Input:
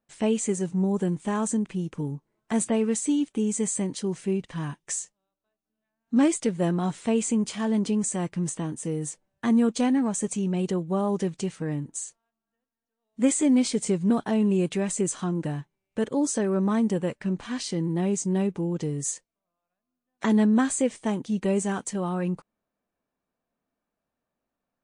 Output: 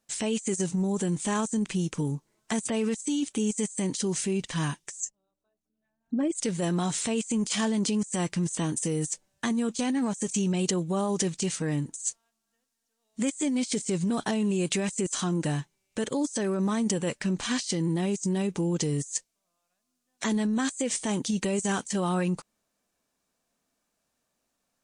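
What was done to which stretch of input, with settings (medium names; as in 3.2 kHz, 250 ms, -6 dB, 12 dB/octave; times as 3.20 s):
5.00–6.35 s: resonances exaggerated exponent 2
whole clip: peak limiter -22.5 dBFS; peaking EQ 7 kHz +15 dB 2.3 oct; compressor with a negative ratio -27 dBFS, ratio -0.5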